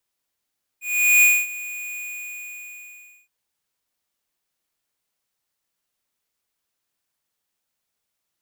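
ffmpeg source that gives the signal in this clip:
ffmpeg -f lavfi -i "aevalsrc='0.224*(2*lt(mod(2460*t,1),0.5)-1)':duration=2.47:sample_rate=44100,afade=type=in:duration=0.413,afade=type=out:start_time=0.413:duration=0.24:silence=0.112,afade=type=out:start_time=1.16:duration=1.31" out.wav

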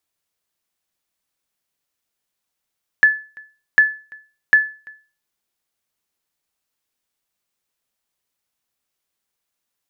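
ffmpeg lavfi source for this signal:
ffmpeg -f lavfi -i "aevalsrc='0.631*(sin(2*PI*1730*mod(t,0.75))*exp(-6.91*mod(t,0.75)/0.35)+0.0447*sin(2*PI*1730*max(mod(t,0.75)-0.34,0))*exp(-6.91*max(mod(t,0.75)-0.34,0)/0.35))':duration=2.25:sample_rate=44100" out.wav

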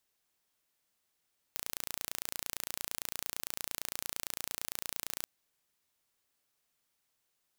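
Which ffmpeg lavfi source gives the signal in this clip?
ffmpeg -f lavfi -i "aevalsrc='0.355*eq(mod(n,1531),0)':duration=3.69:sample_rate=44100" out.wav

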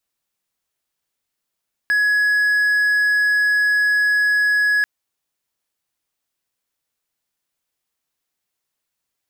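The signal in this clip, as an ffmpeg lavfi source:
ffmpeg -f lavfi -i "aevalsrc='0.251*(1-4*abs(mod(1680*t+0.25,1)-0.5))':duration=2.94:sample_rate=44100" out.wav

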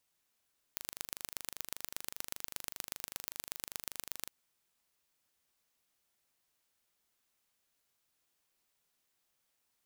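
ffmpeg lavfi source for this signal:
ffmpeg -f lavfi -i "aevalsrc='0.335*eq(mod(n,1757),0)*(0.5+0.5*eq(mod(n,5271),0))':duration=3.52:sample_rate=44100" out.wav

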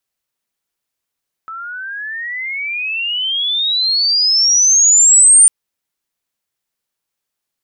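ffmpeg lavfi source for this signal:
ffmpeg -f lavfi -i "aevalsrc='pow(10,(-25.5+22*t/4)/20)*sin(2*PI*1300*4/log(9100/1300)*(exp(log(9100/1300)*t/4)-1))':duration=4:sample_rate=44100" out.wav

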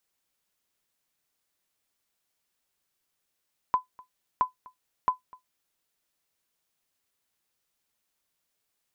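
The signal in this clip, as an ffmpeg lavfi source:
ffmpeg -f lavfi -i "aevalsrc='0.2*(sin(2*PI*1010*mod(t,0.67))*exp(-6.91*mod(t,0.67)/0.13)+0.0596*sin(2*PI*1010*max(mod(t,0.67)-0.25,0))*exp(-6.91*max(mod(t,0.67)-0.25,0)/0.13))':duration=2.01:sample_rate=44100" out.wav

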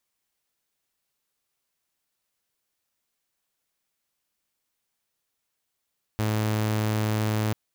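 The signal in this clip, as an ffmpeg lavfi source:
ffmpeg -f lavfi -i "aevalsrc='0.0944*(2*mod(108*t,1)-1)':duration=1.34:sample_rate=44100" out.wav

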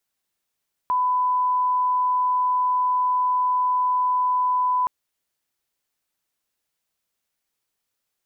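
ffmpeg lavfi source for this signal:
ffmpeg -f lavfi -i "sine=frequency=1000:duration=3.97:sample_rate=44100,volume=0.06dB" out.wav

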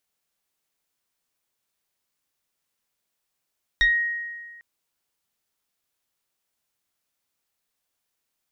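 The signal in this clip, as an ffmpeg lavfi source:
ffmpeg -f lavfi -i "aevalsrc='0.2*pow(10,-3*t/1.59)*sin(2*PI*1880*t+1*pow(10,-3*t/0.24)*sin(2*PI*0.98*1880*t))':duration=0.8:sample_rate=44100" out.wav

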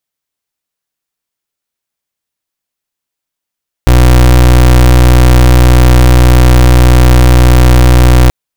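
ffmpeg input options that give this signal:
ffmpeg -f lavfi -i "aevalsrc='0.668*(2*lt(mod(61.7*t,1),0.29)-1)':duration=4.43:sample_rate=44100" out.wav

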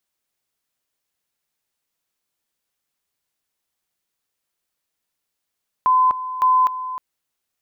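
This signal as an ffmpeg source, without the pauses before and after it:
ffmpeg -f lavfi -i "aevalsrc='pow(10,(-12-13*gte(mod(t,0.56),0.25))/20)*sin(2*PI*1020*t)':duration=1.12:sample_rate=44100" out.wav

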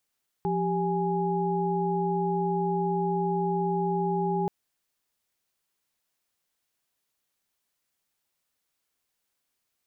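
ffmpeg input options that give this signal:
ffmpeg -f lavfi -i "aevalsrc='0.0376*(sin(2*PI*174.61*t)+sin(2*PI*392*t)+sin(2*PI*830.61*t))':duration=4.03:sample_rate=44100" out.wav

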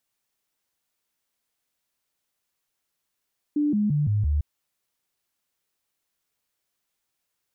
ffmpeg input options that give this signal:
ffmpeg -f lavfi -i "aevalsrc='0.106*clip(min(mod(t,0.17),0.17-mod(t,0.17))/0.005,0,1)*sin(2*PI*295*pow(2,-floor(t/0.17)/2)*mod(t,0.17))':duration=0.85:sample_rate=44100" out.wav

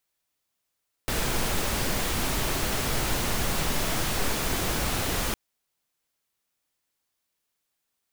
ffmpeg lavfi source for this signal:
ffmpeg -f lavfi -i "anoisesrc=color=pink:amplitude=0.243:duration=4.26:sample_rate=44100:seed=1" out.wav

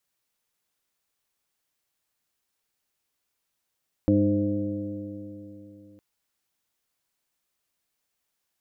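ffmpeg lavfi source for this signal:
ffmpeg -f lavfi -i "aevalsrc='0.0668*pow(10,-3*t/3.42)*sin(2*PI*100.16*t)+0.0668*pow(10,-3*t/3.42)*sin(2*PI*201.28*t)+0.119*pow(10,-3*t/3.42)*sin(2*PI*304.29*t)+0.0119*pow(10,-3*t/3.42)*sin(2*PI*410.11*t)+0.0531*pow(10,-3*t/3.42)*sin(2*PI*519.62*t)+0.0075*pow(10,-3*t/3.42)*sin(2*PI*633.62*t)':duration=1.91:sample_rate=44100" out.wav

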